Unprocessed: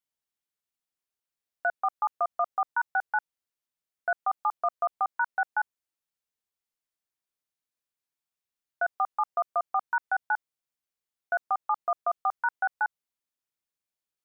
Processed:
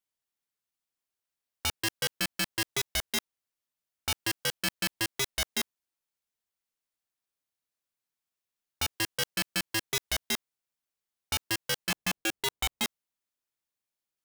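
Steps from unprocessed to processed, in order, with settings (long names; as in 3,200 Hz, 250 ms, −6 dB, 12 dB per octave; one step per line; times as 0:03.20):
0:11.90–0:12.84: tilt shelving filter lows +7 dB, about 740 Hz
wrap-around overflow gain 22.5 dB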